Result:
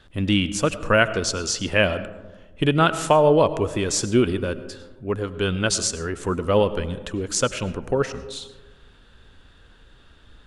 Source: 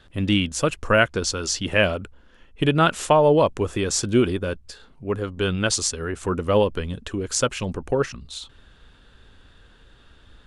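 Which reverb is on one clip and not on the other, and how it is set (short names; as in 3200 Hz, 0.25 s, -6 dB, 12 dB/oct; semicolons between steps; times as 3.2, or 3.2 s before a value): digital reverb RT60 1.3 s, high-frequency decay 0.3×, pre-delay 60 ms, DRR 13.5 dB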